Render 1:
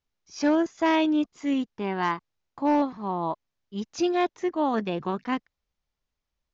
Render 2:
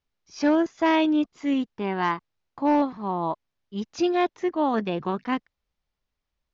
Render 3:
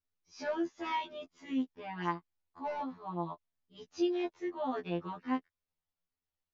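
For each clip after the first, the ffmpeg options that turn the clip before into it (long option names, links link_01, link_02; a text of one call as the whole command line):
ffmpeg -i in.wav -af "lowpass=5600,volume=1.5dB" out.wav
ffmpeg -i in.wav -af "afftfilt=real='re*2*eq(mod(b,4),0)':imag='im*2*eq(mod(b,4),0)':win_size=2048:overlap=0.75,volume=-9dB" out.wav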